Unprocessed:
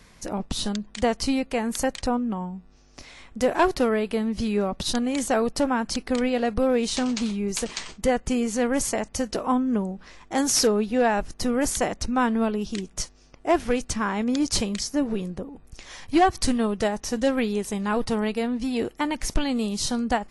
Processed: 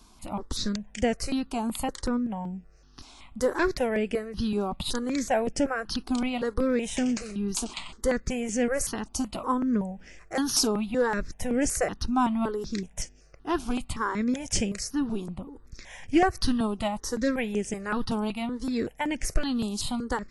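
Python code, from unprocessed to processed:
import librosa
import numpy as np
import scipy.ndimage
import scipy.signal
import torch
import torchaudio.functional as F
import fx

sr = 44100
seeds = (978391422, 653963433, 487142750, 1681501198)

y = fx.phaser_held(x, sr, hz=5.3, low_hz=510.0, high_hz=4000.0)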